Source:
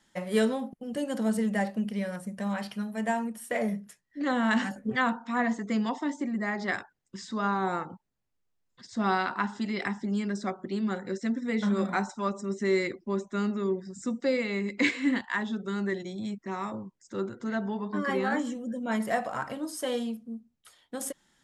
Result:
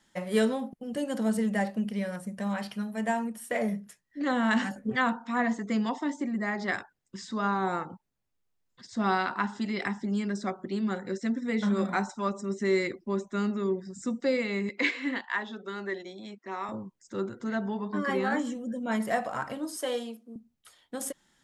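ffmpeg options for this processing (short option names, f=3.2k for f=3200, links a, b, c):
-filter_complex "[0:a]asettb=1/sr,asplit=3[a][b][c];[a]atrim=end=14.694[d];[b]atrim=start=14.69:end=16.69,asetpts=PTS-STARTPTS,afade=t=in:d=0.004:c=qsin,afade=t=out:st=1.996:d=0.004:c=qsin,highpass=370,lowpass=5.1k[e];[c]atrim=start=16.686[f];[d][e]acrossfade=d=0.004:c1=hsin:c2=qsin[g];[g][f]acrossfade=d=0.004:c1=qsin:c2=hsin,asettb=1/sr,asplit=3[h][i][j];[h]atrim=end=19.764[k];[i]atrim=start=19.76:end=20.36,asetpts=PTS-STARTPTS,afade=t=in:d=0.004:c=qsin,afade=t=out:st=0.596:d=0.004:c=qsin,highpass=f=280:w=0.5412,highpass=f=280:w=1.3066[l];[j]atrim=start=20.356[m];[k][l]acrossfade=d=0.004:c1=hsin:c2=qsin[n];[n][m]acrossfade=d=0.004:c1=qsin:c2=hsin"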